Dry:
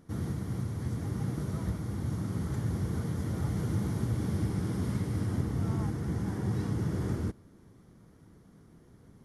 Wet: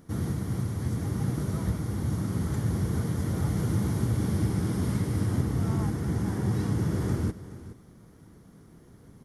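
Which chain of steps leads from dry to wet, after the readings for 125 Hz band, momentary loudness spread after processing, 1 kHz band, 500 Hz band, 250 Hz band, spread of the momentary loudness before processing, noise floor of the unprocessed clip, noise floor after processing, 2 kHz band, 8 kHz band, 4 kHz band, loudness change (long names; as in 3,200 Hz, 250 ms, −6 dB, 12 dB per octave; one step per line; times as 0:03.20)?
+4.0 dB, 3 LU, +4.0 dB, +4.0 dB, +4.0 dB, 3 LU, −58 dBFS, −54 dBFS, +4.5 dB, +6.5 dB, +5.0 dB, +4.0 dB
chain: high-shelf EQ 9,100 Hz +5.5 dB
single-tap delay 422 ms −15.5 dB
level +4 dB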